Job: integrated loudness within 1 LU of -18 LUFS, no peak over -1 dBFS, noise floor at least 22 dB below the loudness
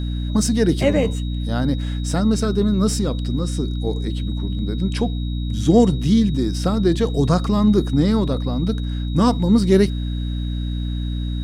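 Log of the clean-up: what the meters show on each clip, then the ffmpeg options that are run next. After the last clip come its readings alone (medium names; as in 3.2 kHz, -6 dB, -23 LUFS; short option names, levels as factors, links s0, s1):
hum 60 Hz; highest harmonic 300 Hz; hum level -21 dBFS; steady tone 3.8 kHz; tone level -39 dBFS; loudness -20.0 LUFS; peak level -3.0 dBFS; loudness target -18.0 LUFS
-> -af "bandreject=f=60:t=h:w=4,bandreject=f=120:t=h:w=4,bandreject=f=180:t=h:w=4,bandreject=f=240:t=h:w=4,bandreject=f=300:t=h:w=4"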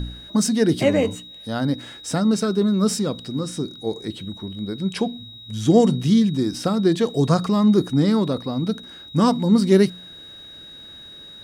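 hum not found; steady tone 3.8 kHz; tone level -39 dBFS
-> -af "bandreject=f=3800:w=30"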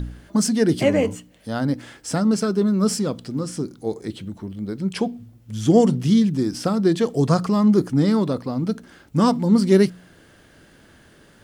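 steady tone not found; loudness -20.5 LUFS; peak level -4.0 dBFS; loudness target -18.0 LUFS
-> -af "volume=1.33"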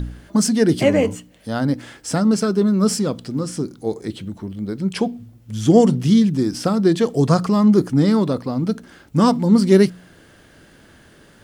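loudness -18.0 LUFS; peak level -2.0 dBFS; noise floor -50 dBFS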